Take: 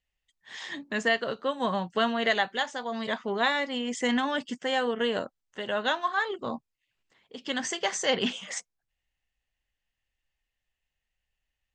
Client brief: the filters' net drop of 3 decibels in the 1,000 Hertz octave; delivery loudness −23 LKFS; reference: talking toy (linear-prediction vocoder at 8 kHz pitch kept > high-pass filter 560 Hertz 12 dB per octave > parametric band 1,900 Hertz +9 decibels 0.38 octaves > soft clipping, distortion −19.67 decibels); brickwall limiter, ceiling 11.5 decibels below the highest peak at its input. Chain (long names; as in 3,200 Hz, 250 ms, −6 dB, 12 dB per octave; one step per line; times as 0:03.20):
parametric band 1,000 Hz −3.5 dB
brickwall limiter −23 dBFS
linear-prediction vocoder at 8 kHz pitch kept
high-pass filter 560 Hz 12 dB per octave
parametric band 1,900 Hz +9 dB 0.38 octaves
soft clipping −22 dBFS
level +11 dB